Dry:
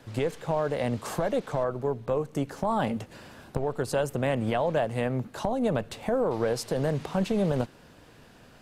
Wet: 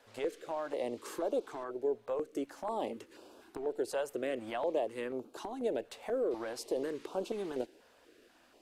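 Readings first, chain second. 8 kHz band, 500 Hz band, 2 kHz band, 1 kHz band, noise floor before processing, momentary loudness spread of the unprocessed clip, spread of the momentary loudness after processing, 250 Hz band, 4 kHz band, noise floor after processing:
-8.0 dB, -7.0 dB, -10.0 dB, -9.5 dB, -54 dBFS, 5 LU, 7 LU, -11.0 dB, -8.5 dB, -65 dBFS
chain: resonant low shelf 230 Hz -14 dB, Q 3; step-sequenced notch 4.1 Hz 330–1900 Hz; trim -8 dB

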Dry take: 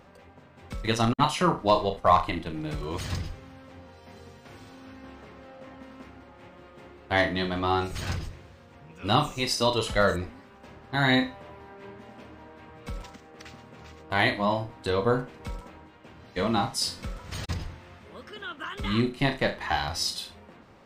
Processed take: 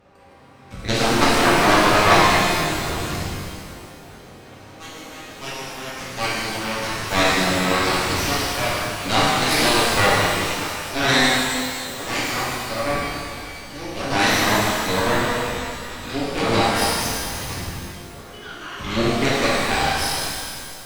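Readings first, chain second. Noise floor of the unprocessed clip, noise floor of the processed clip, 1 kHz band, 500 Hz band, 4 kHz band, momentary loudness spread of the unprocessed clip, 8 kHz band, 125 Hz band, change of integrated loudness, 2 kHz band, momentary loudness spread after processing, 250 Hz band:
-52 dBFS, -42 dBFS, +8.0 dB, +6.5 dB, +10.5 dB, 23 LU, +14.0 dB, +4.5 dB, +7.0 dB, +11.0 dB, 17 LU, +6.5 dB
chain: Chebyshev shaper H 6 -7 dB, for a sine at -6.5 dBFS; ever faster or slower copies 190 ms, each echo +3 st, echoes 3, each echo -6 dB; pitch-shifted reverb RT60 2.2 s, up +12 st, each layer -8 dB, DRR -7 dB; trim -4.5 dB

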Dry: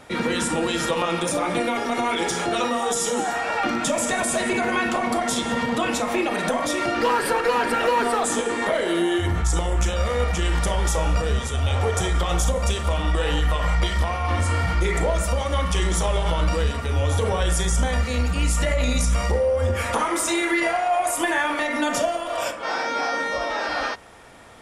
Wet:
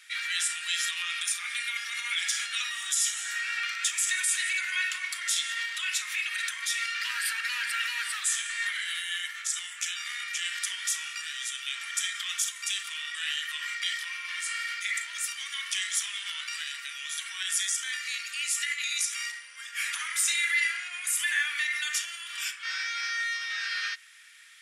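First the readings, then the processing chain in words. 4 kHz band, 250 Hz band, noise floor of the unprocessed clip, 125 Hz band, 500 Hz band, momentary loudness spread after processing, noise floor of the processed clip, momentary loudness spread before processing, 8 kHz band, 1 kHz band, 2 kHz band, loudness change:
0.0 dB, under -40 dB, -28 dBFS, under -40 dB, under -40 dB, 7 LU, -42 dBFS, 3 LU, 0.0 dB, -19.0 dB, -2.0 dB, -6.5 dB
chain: steep high-pass 1.7 kHz 36 dB/octave

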